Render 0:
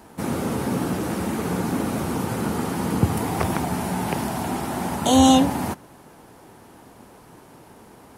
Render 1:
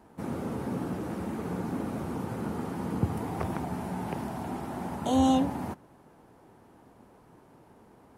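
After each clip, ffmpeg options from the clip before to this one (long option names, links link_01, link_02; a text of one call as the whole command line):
ffmpeg -i in.wav -af "highshelf=frequency=2200:gain=-10,volume=-8dB" out.wav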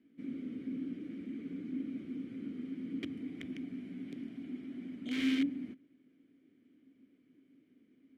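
ffmpeg -i in.wav -filter_complex "[0:a]aeval=exprs='(mod(9.44*val(0)+1,2)-1)/9.44':channel_layout=same,asplit=3[link_01][link_02][link_03];[link_01]bandpass=frequency=270:width_type=q:width=8,volume=0dB[link_04];[link_02]bandpass=frequency=2290:width_type=q:width=8,volume=-6dB[link_05];[link_03]bandpass=frequency=3010:width_type=q:width=8,volume=-9dB[link_06];[link_04][link_05][link_06]amix=inputs=3:normalize=0,volume=1dB" out.wav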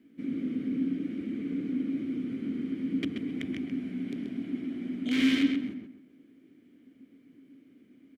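ffmpeg -i in.wav -filter_complex "[0:a]asplit=2[link_01][link_02];[link_02]adelay=131,lowpass=frequency=3800:poles=1,volume=-5dB,asplit=2[link_03][link_04];[link_04]adelay=131,lowpass=frequency=3800:poles=1,volume=0.28,asplit=2[link_05][link_06];[link_06]adelay=131,lowpass=frequency=3800:poles=1,volume=0.28,asplit=2[link_07][link_08];[link_08]adelay=131,lowpass=frequency=3800:poles=1,volume=0.28[link_09];[link_01][link_03][link_05][link_07][link_09]amix=inputs=5:normalize=0,volume=7.5dB" out.wav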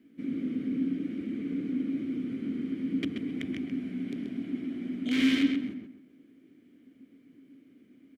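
ffmpeg -i in.wav -af "bandreject=frequency=880:width=12" out.wav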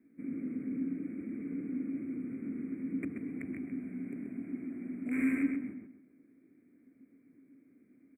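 ffmpeg -i in.wav -af "asuperstop=centerf=4400:order=20:qfactor=0.85,volume=-5.5dB" out.wav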